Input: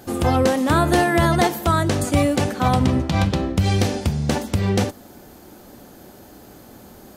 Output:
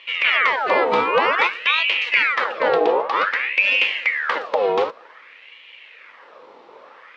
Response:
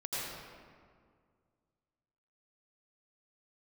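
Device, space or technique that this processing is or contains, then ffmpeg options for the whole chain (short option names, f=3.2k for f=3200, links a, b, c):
voice changer toy: -af "aeval=exprs='val(0)*sin(2*PI*1600*n/s+1600*0.65/0.53*sin(2*PI*0.53*n/s))':c=same,highpass=440,equalizer=f=500:t=q:w=4:g=9,equalizer=f=720:t=q:w=4:g=-6,equalizer=f=1.5k:t=q:w=4:g=-5,lowpass=f=3.7k:w=0.5412,lowpass=f=3.7k:w=1.3066,volume=3.5dB"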